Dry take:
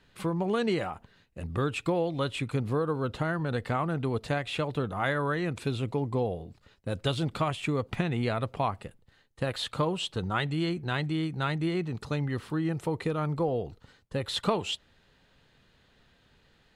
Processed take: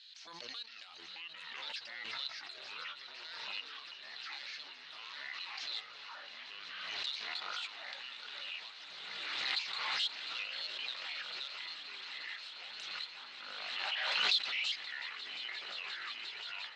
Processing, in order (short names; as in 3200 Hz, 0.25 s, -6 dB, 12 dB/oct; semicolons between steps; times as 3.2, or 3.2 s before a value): trilling pitch shifter -7.5 st, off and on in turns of 0.135 s; limiter -21.5 dBFS, peak gain reduction 6.5 dB; AGC gain up to 12 dB; soft clip -16.5 dBFS, distortion -13 dB; ladder band-pass 4500 Hz, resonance 65%; air absorption 110 m; on a send: swelling echo 0.176 s, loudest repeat 8, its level -16.5 dB; on the sum: echoes that change speed 0.392 s, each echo -6 st, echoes 3; backwards sustainer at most 25 dB/s; gain +1 dB